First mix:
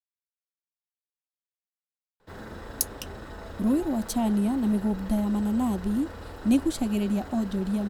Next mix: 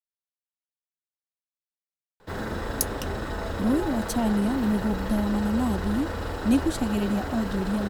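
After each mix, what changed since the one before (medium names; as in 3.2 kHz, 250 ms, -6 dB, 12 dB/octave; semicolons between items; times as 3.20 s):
background +9.5 dB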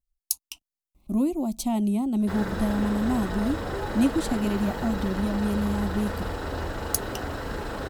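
speech: entry -2.50 s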